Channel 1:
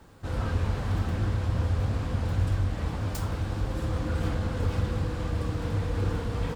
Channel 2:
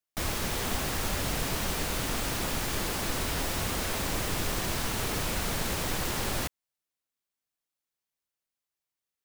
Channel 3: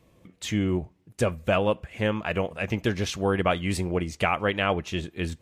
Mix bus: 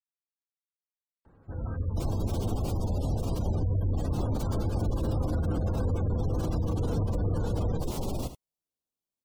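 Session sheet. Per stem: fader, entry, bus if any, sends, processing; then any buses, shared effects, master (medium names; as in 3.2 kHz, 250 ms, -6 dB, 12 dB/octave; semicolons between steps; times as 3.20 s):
3.18 s -8.5 dB -> 3.73 s -1.5 dB, 1.25 s, no send, echo send -14 dB, none
-1.5 dB, 1.80 s, no send, echo send -11.5 dB, peaking EQ 1.7 kHz -15 dB 1 oct
mute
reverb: none
echo: delay 74 ms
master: spectral gate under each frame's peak -25 dB strong; tilt shelf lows +4 dB, about 1.3 kHz; peak limiter -20.5 dBFS, peak gain reduction 7.5 dB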